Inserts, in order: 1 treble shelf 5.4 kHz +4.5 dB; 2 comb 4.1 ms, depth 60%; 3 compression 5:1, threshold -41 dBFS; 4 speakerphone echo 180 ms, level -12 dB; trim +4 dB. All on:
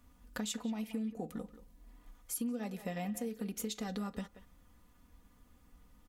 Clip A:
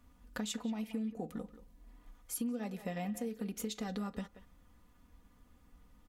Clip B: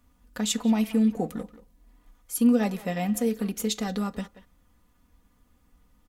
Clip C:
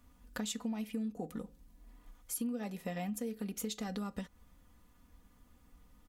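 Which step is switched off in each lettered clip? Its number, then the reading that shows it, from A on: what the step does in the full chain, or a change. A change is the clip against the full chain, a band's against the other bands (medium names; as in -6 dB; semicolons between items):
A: 1, 8 kHz band -2.0 dB; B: 3, mean gain reduction 10.0 dB; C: 4, echo-to-direct -20.0 dB to none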